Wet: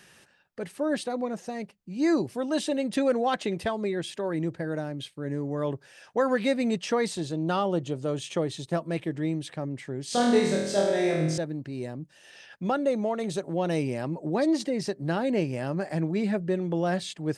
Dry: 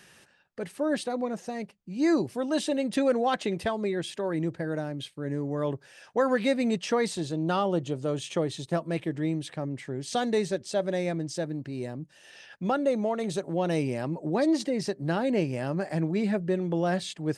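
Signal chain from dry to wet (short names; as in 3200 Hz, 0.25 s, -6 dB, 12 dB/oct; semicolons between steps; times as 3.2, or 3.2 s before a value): 10.06–11.38 flutter echo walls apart 4.3 m, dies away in 0.92 s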